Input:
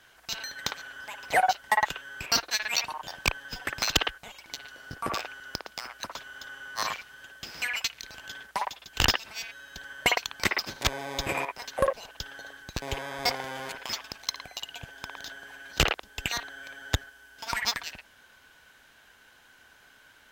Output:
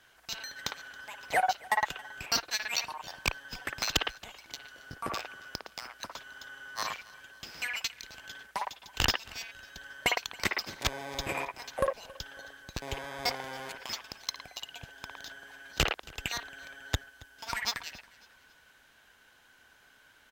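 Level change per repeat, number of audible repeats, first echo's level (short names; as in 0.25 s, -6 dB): -8.0 dB, 2, -22.0 dB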